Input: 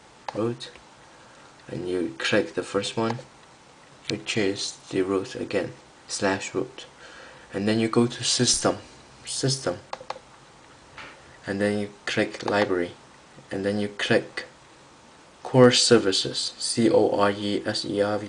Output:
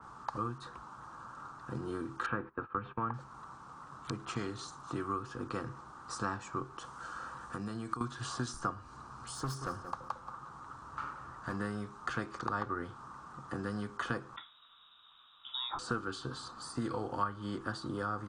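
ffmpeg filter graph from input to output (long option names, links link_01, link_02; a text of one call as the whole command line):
ffmpeg -i in.wav -filter_complex "[0:a]asettb=1/sr,asplit=3[link_01][link_02][link_03];[link_01]atrim=end=2.264[link_04];[link_02]atrim=start=2.26:end=3.14,asetpts=PTS-STARTPTS,afade=type=in:duration=0.004:curve=qsin,afade=type=out:start_time=0.876:duration=0.004:curve=qsin,agate=range=-19dB:threshold=-36dB:ratio=16:release=100:detection=peak,lowpass=frequency=2400:width=0.5412,lowpass=frequency=2400:width=1.3066,acompressor=mode=upward:threshold=-37dB:ratio=2.5:attack=3.2:release=140:knee=2.83:detection=peak[link_05];[link_03]atrim=start=3.136[link_06];[link_04][link_05]acrossfade=duration=0.004:curve1=hsin:curve2=qsin[link_07];[link_07][link_06]acrossfade=duration=0.004:curve1=qsin:curve2=hsin,asettb=1/sr,asplit=3[link_08][link_09][link_10];[link_08]atrim=end=6.784[link_11];[link_09]atrim=start=6.78:end=8.01,asetpts=PTS-STARTPTS,afade=type=in:duration=0.004:curve=qsin,afade=type=out:start_time=1.226:duration=0.004:curve=qsin,highshelf=frequency=4200:gain=11,acompressor=threshold=-31dB:ratio=5:attack=3.2:release=140:knee=1:detection=peak[link_12];[link_10]atrim=start=8.006[link_13];[link_11][link_12]acrossfade=duration=0.004:curve1=hsin:curve2=qsin[link_14];[link_14][link_13]acrossfade=duration=0.004:curve1=qsin:curve2=hsin,asettb=1/sr,asplit=3[link_15][link_16][link_17];[link_15]atrim=end=9.344[link_18];[link_16]atrim=start=9.34:end=11.58,asetpts=PTS-STARTPTS,afade=type=in:duration=0.004:curve=qsin,afade=type=out:start_time=2.236:duration=0.004:curve=qsin,asoftclip=type=hard:threshold=-25dB,aecho=1:1:179|358|537:0.224|0.0716|0.0229,atrim=end_sample=98784[link_19];[link_17]atrim=start=11.576[link_20];[link_18][link_19]acrossfade=duration=0.004:curve1=hsin:curve2=qsin[link_21];[link_21][link_20]acrossfade=duration=0.004:curve1=qsin:curve2=hsin,asettb=1/sr,asplit=3[link_22][link_23][link_24];[link_22]atrim=end=14.364[link_25];[link_23]atrim=start=14.36:end=15.79,asetpts=PTS-STARTPTS,afade=type=in:duration=0.004:curve=qsin,afade=type=out:start_time=1.426:duration=0.004:curve=qsin,tiltshelf=frequency=680:gain=9.5,lowpass=frequency=3300:width_type=q:width=0.5098,lowpass=frequency=3300:width_type=q:width=0.6013,lowpass=frequency=3300:width_type=q:width=0.9,lowpass=frequency=3300:width_type=q:width=2.563,afreqshift=-3900[link_26];[link_24]atrim=start=15.786[link_27];[link_25][link_26]acrossfade=duration=0.004:curve1=hsin:curve2=qsin[link_28];[link_28][link_27]acrossfade=duration=0.004:curve1=qsin:curve2=hsin,firequalizer=gain_entry='entry(130,0);entry(550,-11);entry(1200,11);entry(2000,-17);entry(5800,-11)':delay=0.05:min_phase=1,acrossover=split=110|1600[link_29][link_30][link_31];[link_29]acompressor=threshold=-47dB:ratio=4[link_32];[link_30]acompressor=threshold=-37dB:ratio=4[link_33];[link_31]acompressor=threshold=-41dB:ratio=4[link_34];[link_32][link_33][link_34]amix=inputs=3:normalize=0,adynamicequalizer=threshold=0.00224:dfrequency=3500:dqfactor=0.7:tfrequency=3500:tqfactor=0.7:attack=5:release=100:ratio=0.375:range=3:mode=cutabove:tftype=highshelf" out.wav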